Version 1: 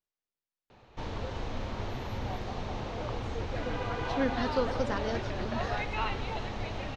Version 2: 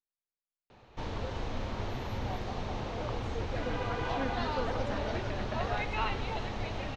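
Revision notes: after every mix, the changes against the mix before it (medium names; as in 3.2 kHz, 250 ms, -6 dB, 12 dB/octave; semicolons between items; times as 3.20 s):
speech -7.5 dB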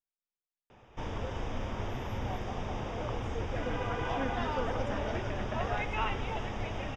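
master: add Butterworth band-stop 4.2 kHz, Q 3.6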